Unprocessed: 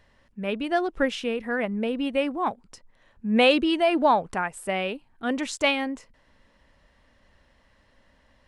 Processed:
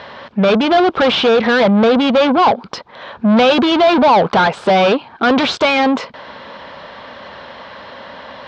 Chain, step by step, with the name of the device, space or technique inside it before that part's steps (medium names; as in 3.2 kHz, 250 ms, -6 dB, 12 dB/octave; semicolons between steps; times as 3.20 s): overdrive pedal into a guitar cabinet (overdrive pedal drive 38 dB, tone 5.9 kHz, clips at -7 dBFS; cabinet simulation 83–3900 Hz, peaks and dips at 300 Hz -5 dB, 1.9 kHz -10 dB, 2.7 kHz -7 dB); trim +4 dB